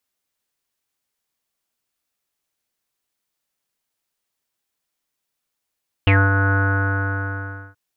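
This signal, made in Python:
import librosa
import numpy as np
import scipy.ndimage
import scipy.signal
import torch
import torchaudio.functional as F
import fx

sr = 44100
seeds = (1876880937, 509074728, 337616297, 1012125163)

y = fx.sub_voice(sr, note=43, wave='square', cutoff_hz=1500.0, q=11.0, env_oct=1.0, env_s=0.1, attack_ms=1.0, decay_s=0.23, sustain_db=-5.5, release_s=1.22, note_s=0.46, slope=24)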